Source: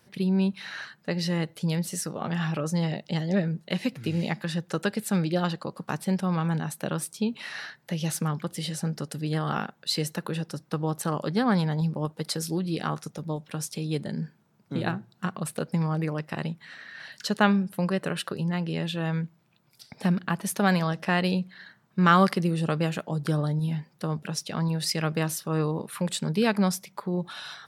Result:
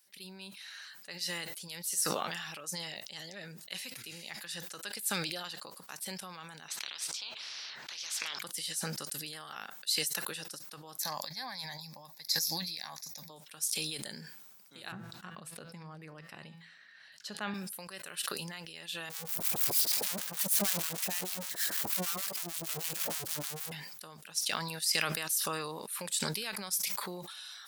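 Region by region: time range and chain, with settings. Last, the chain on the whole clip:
0:06.68–0:08.39: high-frequency loss of the air 200 metres + every bin compressed towards the loudest bin 10 to 1
0:11.00–0:13.30: high-shelf EQ 3,000 Hz +6.5 dB + phaser with its sweep stopped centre 2,000 Hz, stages 8
0:14.92–0:17.54: RIAA equalisation playback + hum removal 166.5 Hz, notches 32
0:19.09–0:23.72: sign of each sample alone + two-band tremolo in antiphase 6.5 Hz, depth 100%, crossover 720 Hz
whole clip: first difference; level that may fall only so fast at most 29 dB per second

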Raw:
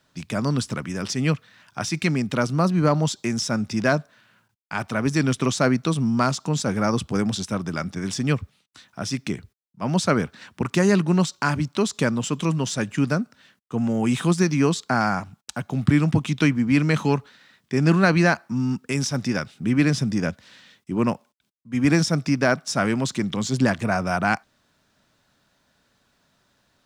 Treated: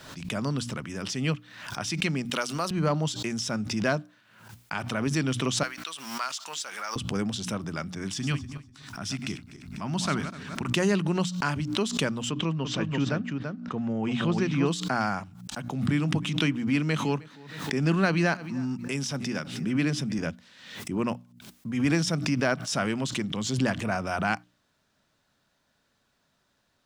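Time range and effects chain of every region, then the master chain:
0:02.25–0:02.71: high-pass filter 270 Hz 6 dB per octave + spectral tilt +2.5 dB per octave
0:05.63–0:06.96: mu-law and A-law mismatch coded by mu + high-pass filter 1,300 Hz
0:08.08–0:10.64: feedback delay that plays each chunk backwards 124 ms, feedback 41%, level −9.5 dB + parametric band 500 Hz −12 dB 0.62 octaves
0:12.31–0:14.68: high-frequency loss of the air 160 metres + single-tap delay 336 ms −5.5 dB
0:15.55–0:20.19: Chebyshev high-pass filter 150 Hz + repeating echo 311 ms, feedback 16%, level −22 dB
whole clip: mains-hum notches 60/120/180/240/300 Hz; dynamic equaliser 3,000 Hz, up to +7 dB, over −49 dBFS, Q 3.6; background raised ahead of every attack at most 65 dB per second; level −6 dB

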